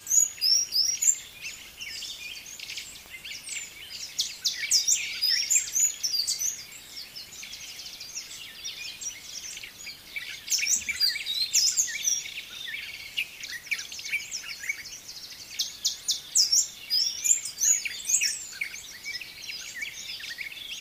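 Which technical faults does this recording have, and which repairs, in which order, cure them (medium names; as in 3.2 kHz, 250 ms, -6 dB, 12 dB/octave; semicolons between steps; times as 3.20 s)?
1.33 s: pop
3.06 s: pop -29 dBFS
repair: de-click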